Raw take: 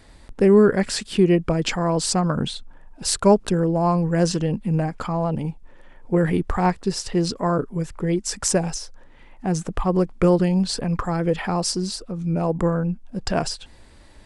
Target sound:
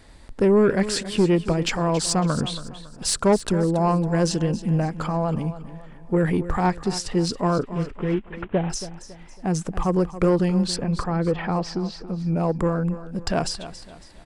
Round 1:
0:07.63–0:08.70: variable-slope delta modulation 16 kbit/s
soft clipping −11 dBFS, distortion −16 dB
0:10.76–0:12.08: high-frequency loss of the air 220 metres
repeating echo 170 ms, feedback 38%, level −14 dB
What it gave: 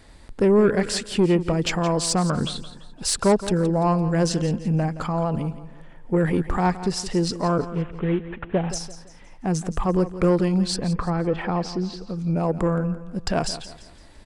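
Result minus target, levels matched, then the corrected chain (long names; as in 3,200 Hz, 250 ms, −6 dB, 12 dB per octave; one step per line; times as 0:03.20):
echo 107 ms early
0:07.63–0:08.70: variable-slope delta modulation 16 kbit/s
soft clipping −11 dBFS, distortion −16 dB
0:10.76–0:12.08: high-frequency loss of the air 220 metres
repeating echo 277 ms, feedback 38%, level −14 dB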